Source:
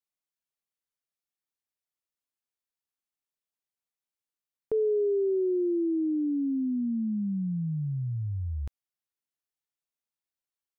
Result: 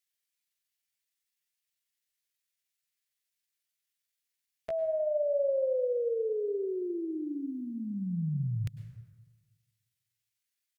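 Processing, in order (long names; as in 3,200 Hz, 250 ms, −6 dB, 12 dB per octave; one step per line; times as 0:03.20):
drawn EQ curve 110 Hz 0 dB, 160 Hz −8 dB, 370 Hz −2 dB, 550 Hz −12 dB, 1,300 Hz +10 dB
pitch shifter +7 semitones
dense smooth reverb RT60 1.5 s, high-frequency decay 0.5×, pre-delay 90 ms, DRR 10.5 dB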